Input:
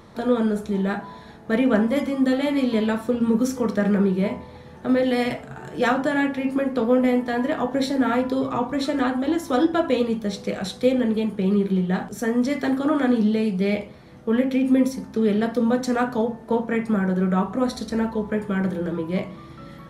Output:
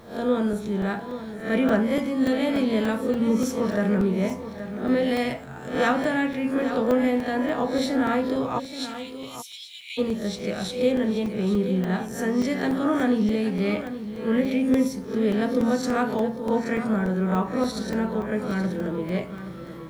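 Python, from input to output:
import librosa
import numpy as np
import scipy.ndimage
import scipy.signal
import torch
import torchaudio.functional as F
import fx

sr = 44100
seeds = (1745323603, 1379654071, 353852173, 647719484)

y = fx.spec_swells(x, sr, rise_s=0.43)
y = fx.steep_highpass(y, sr, hz=2200.0, slope=96, at=(8.58, 9.97), fade=0.02)
y = y + 10.0 ** (-11.5 / 20.0) * np.pad(y, (int(826 * sr / 1000.0), 0))[:len(y)]
y = fx.quant_dither(y, sr, seeds[0], bits=10, dither='none')
y = fx.buffer_crackle(y, sr, first_s=0.53, period_s=0.29, block=128, kind='zero')
y = y * librosa.db_to_amplitude(-3.0)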